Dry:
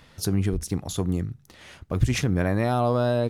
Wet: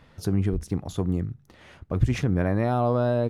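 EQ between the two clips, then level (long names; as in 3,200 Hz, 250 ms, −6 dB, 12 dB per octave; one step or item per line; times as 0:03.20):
high-shelf EQ 2,900 Hz −12 dB
0.0 dB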